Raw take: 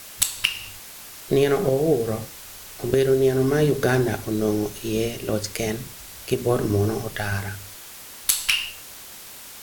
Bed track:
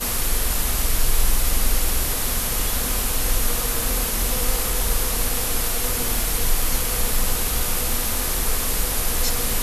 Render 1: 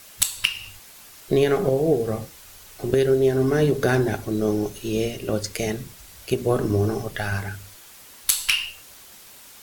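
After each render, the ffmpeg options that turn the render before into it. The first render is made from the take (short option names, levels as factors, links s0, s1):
-af "afftdn=nr=6:nf=-41"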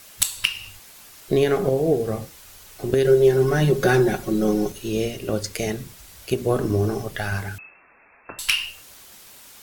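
-filter_complex "[0:a]asettb=1/sr,asplit=3[s0][s1][s2];[s0]atrim=end=3.044[s3];[s1]atrim=start=3.04:end=4.72,asetpts=PTS-STARTPTS,afade=t=in:d=0.004:c=qsin,afade=t=out:st=1.676:d=0.004:c=qsin,aecho=1:1:5.5:0.87,atrim=end_sample=74088[s4];[s2]atrim=start=4.716[s5];[s3][s4]acrossfade=d=0.004:c1=hsin:c2=qsin[s6];[s6][s5]acrossfade=d=0.004:c1=qsin:c2=hsin,asettb=1/sr,asplit=3[s7][s8][s9];[s7]atrim=end=7.584[s10];[s8]atrim=start=7.58:end=8.39,asetpts=PTS-STARTPTS,afade=t=in:d=0.004:c=qsin,afade=t=out:st=0.806:d=0.004:c=qsin,lowpass=f=2300:t=q:w=0.5098,lowpass=f=2300:t=q:w=0.6013,lowpass=f=2300:t=q:w=0.9,lowpass=f=2300:t=q:w=2.563,afreqshift=-2700[s11];[s9]atrim=start=8.386[s12];[s10][s11]acrossfade=d=0.004:c1=hsin:c2=qsin[s13];[s13][s12]acrossfade=d=0.004:c1=qsin:c2=hsin"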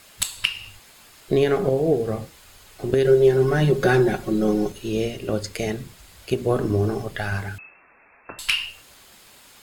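-af "highshelf=f=9900:g=-10.5,bandreject=f=5800:w=9.3"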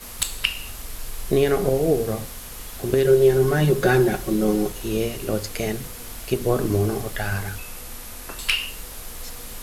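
-filter_complex "[1:a]volume=0.2[s0];[0:a][s0]amix=inputs=2:normalize=0"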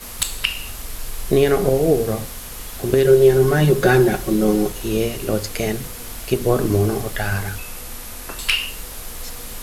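-af "volume=1.5,alimiter=limit=0.794:level=0:latency=1"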